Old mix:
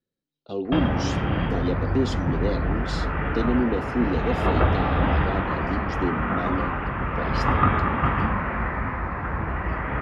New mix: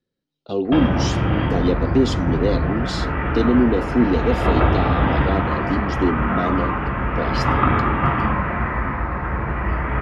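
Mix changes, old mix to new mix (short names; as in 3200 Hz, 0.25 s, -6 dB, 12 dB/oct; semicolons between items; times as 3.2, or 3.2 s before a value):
speech +6.5 dB; reverb: on, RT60 0.65 s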